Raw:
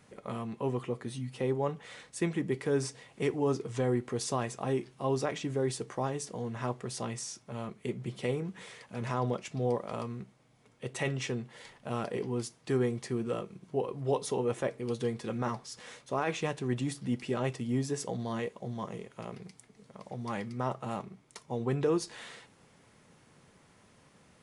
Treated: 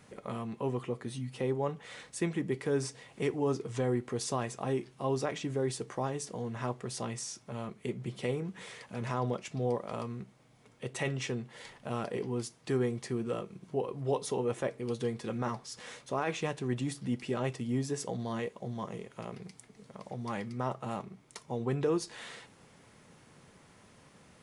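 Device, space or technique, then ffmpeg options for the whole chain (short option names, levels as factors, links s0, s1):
parallel compression: -filter_complex "[0:a]asplit=2[s0][s1];[s1]acompressor=threshold=0.00501:ratio=6,volume=0.708[s2];[s0][s2]amix=inputs=2:normalize=0,volume=0.794"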